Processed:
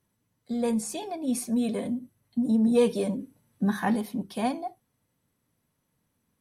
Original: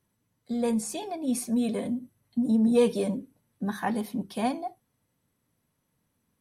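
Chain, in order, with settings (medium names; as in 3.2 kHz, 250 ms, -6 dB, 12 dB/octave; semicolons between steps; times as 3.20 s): 3.19–3.96 s: harmonic-percussive split harmonic +6 dB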